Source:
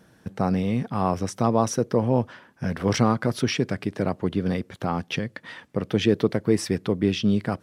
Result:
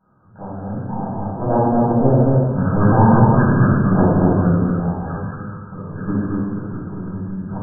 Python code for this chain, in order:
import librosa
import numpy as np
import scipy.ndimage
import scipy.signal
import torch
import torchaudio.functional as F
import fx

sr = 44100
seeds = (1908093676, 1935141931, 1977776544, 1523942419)

p1 = fx.doppler_pass(x, sr, speed_mps=16, closest_m=15.0, pass_at_s=3.26)
p2 = fx.transient(p1, sr, attack_db=-11, sustain_db=-7)
p3 = fx.level_steps(p2, sr, step_db=15)
p4 = fx.peak_eq(p3, sr, hz=1200.0, db=5.5, octaves=2.3)
p5 = p4 + fx.echo_single(p4, sr, ms=228, db=-3.0, dry=0)
p6 = fx.room_shoebox(p5, sr, seeds[0], volume_m3=890.0, walls='mixed', distance_m=8.3)
p7 = fx.formant_shift(p6, sr, semitones=-5)
p8 = fx.brickwall_lowpass(p7, sr, high_hz=1700.0)
y = p8 * 10.0 ** (1.5 / 20.0)